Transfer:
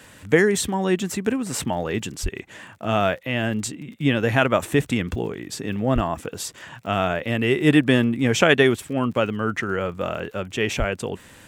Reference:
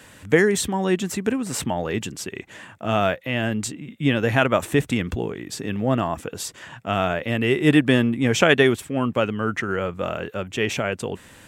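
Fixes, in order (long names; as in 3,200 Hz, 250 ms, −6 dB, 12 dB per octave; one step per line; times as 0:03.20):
click removal
high-pass at the plosives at 0:02.22/0:05.94/0:10.78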